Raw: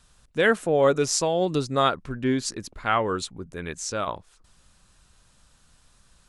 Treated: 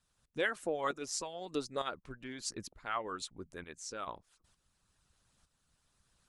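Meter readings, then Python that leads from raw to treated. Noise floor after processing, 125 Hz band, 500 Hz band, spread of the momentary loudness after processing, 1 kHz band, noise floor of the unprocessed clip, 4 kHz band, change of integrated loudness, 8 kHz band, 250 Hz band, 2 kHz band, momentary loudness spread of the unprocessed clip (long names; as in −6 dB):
−79 dBFS, −21.0 dB, −16.0 dB, 11 LU, −13.5 dB, −61 dBFS, −12.0 dB, −14.5 dB, −12.0 dB, −16.5 dB, −11.5 dB, 13 LU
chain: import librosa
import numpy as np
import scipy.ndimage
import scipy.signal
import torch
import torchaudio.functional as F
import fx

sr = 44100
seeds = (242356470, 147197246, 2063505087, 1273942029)

y = fx.tremolo_shape(x, sr, shape='saw_up', hz=1.1, depth_pct=50)
y = fx.hpss(y, sr, part='harmonic', gain_db=-16)
y = y * 10.0 ** (-7.0 / 20.0)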